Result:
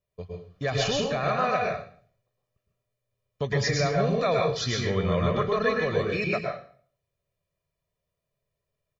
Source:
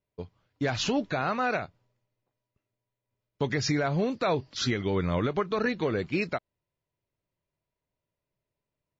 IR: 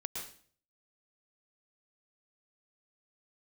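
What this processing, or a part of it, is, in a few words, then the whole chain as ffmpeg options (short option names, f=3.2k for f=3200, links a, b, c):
microphone above a desk: -filter_complex "[0:a]aecho=1:1:1.7:0.63[a];[1:a]atrim=start_sample=2205[b];[a][b]afir=irnorm=-1:irlink=0,volume=1.5dB"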